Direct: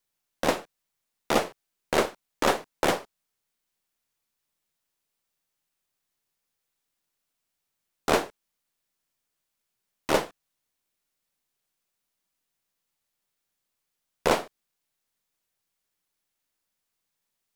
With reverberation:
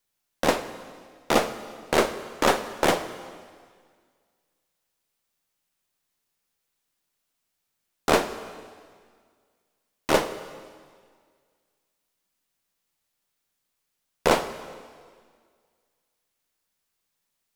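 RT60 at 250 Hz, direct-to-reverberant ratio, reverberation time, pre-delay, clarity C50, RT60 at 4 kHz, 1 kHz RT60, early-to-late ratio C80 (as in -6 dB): 1.9 s, 11.0 dB, 1.9 s, 7 ms, 12.0 dB, 1.8 s, 1.9 s, 13.0 dB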